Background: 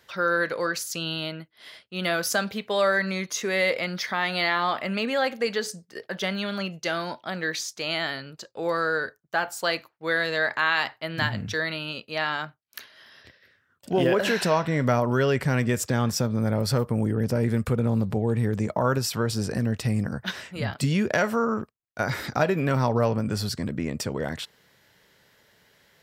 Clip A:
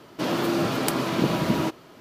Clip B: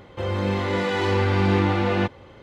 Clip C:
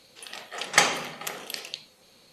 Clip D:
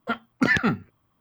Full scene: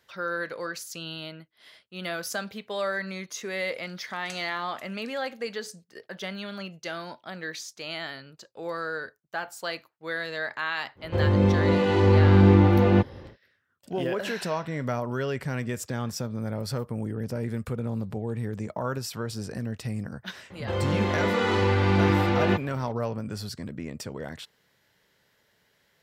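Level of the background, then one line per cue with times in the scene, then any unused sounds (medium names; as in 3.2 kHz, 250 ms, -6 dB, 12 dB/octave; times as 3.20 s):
background -7 dB
3.52 s: add C -6.5 dB + amplifier tone stack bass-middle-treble 6-0-2
10.95 s: add B -0.5 dB, fades 0.10 s + tilt shelf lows +6 dB, about 720 Hz
20.50 s: add B -1.5 dB
not used: A, D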